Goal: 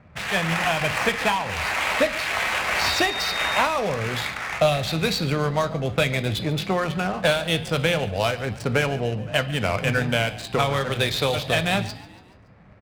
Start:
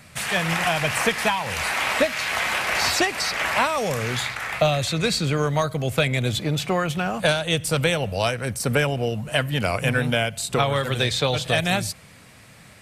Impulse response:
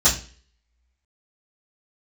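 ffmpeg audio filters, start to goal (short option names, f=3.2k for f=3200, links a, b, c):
-filter_complex "[0:a]highshelf=f=10k:g=-11,adynamicsmooth=sensitivity=7:basefreq=890,asettb=1/sr,asplit=3[a][b][c];[a]atrim=end=2.864[d];[b]atrim=start=2.86:end=3.6,asetpts=PTS-STARTPTS,afade=t=in:d=0.004:c=qsin,afade=t=out:st=0.736:d=0.004:c=qsin,aeval=exprs='val(0)+0.0282*sin(2*PI*3700*n/s)':c=same[e];[c]atrim=start=3.596[f];[d][e]acrossfade=d=0.004:c1=hsin:c2=qsin[g];[g][f]acrossfade=d=0.004:c1=qsin:c2=hsin,asplit=5[h][i][j][k][l];[i]adelay=142,afreqshift=47,volume=-18.5dB[m];[j]adelay=284,afreqshift=94,volume=-24.2dB[n];[k]adelay=426,afreqshift=141,volume=-29.9dB[o];[l]adelay=568,afreqshift=188,volume=-35.5dB[p];[h][m][n][o][p]amix=inputs=5:normalize=0,asplit=2[q][r];[1:a]atrim=start_sample=2205,asetrate=29988,aresample=44100[s];[r][s]afir=irnorm=-1:irlink=0,volume=-31dB[t];[q][t]amix=inputs=2:normalize=0"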